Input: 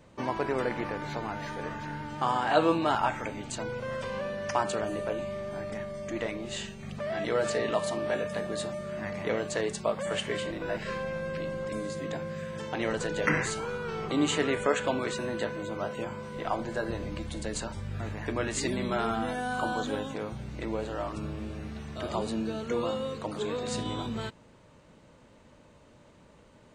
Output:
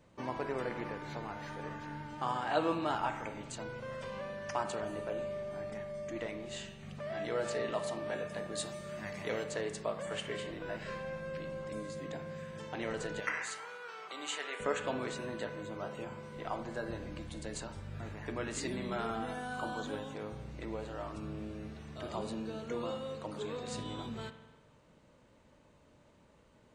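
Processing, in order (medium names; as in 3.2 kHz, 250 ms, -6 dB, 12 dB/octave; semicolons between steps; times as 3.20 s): 8.55–9.44 s: treble shelf 3.3 kHz +10 dB; 13.20–14.60 s: high-pass 800 Hz 12 dB/octave; spring tank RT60 1.2 s, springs 47 ms, chirp 50 ms, DRR 9.5 dB; trim -7.5 dB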